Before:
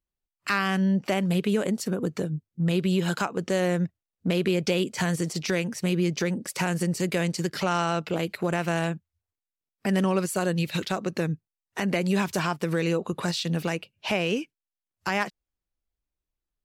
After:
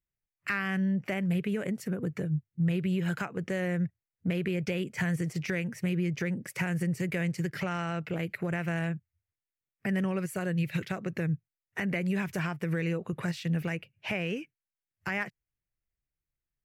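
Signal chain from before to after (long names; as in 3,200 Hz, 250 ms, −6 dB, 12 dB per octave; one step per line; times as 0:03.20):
downward compressor 1.5 to 1, threshold −28 dBFS, peak gain reduction 3.5 dB
octave-band graphic EQ 125/250/1,000/2,000/4,000/8,000 Hz +11/−3/−6/+9/−10/−5 dB
level −4.5 dB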